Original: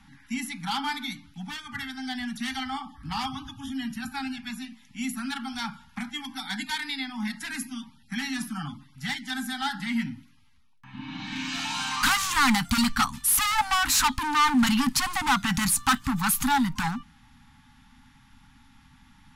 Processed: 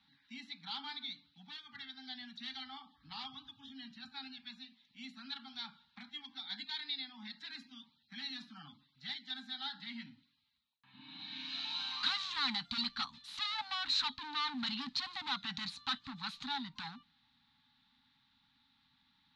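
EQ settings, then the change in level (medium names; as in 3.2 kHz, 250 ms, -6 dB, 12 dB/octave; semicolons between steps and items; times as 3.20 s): high-pass 210 Hz 6 dB/octave; four-pole ladder low-pass 4.2 kHz, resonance 80%; -5.5 dB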